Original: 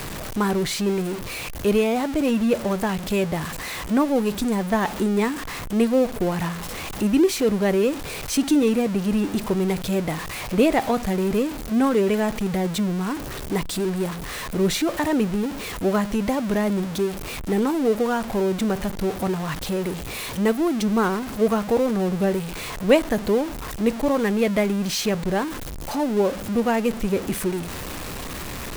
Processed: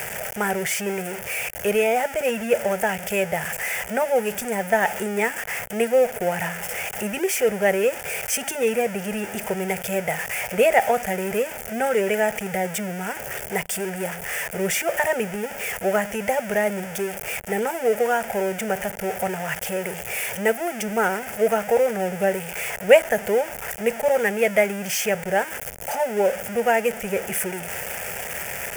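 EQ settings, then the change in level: HPF 510 Hz 6 dB/oct; fixed phaser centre 1100 Hz, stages 6; +7.5 dB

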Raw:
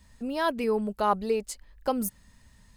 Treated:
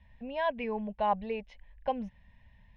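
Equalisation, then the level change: elliptic low-pass 5100 Hz, stop band 40 dB; air absorption 56 m; fixed phaser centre 1300 Hz, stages 6; 0.0 dB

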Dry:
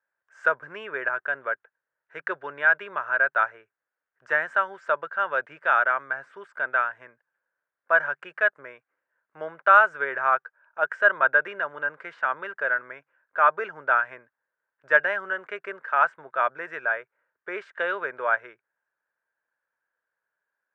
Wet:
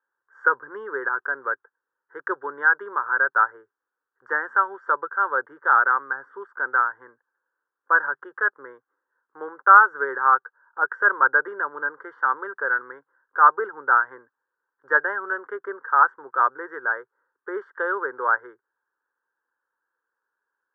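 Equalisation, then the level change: polynomial smoothing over 41 samples; HPF 130 Hz; fixed phaser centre 640 Hz, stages 6; +6.0 dB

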